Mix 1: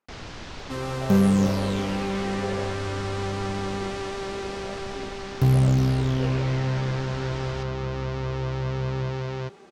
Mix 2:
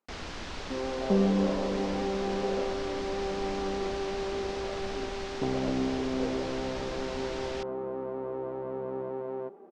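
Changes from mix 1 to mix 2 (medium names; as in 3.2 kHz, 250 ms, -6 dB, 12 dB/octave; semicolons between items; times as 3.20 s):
speech: add peaking EQ 2.3 kHz -7 dB 2.2 oct; second sound: add Butterworth band-pass 440 Hz, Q 0.71; master: add peaking EQ 120 Hz -11.5 dB 0.49 oct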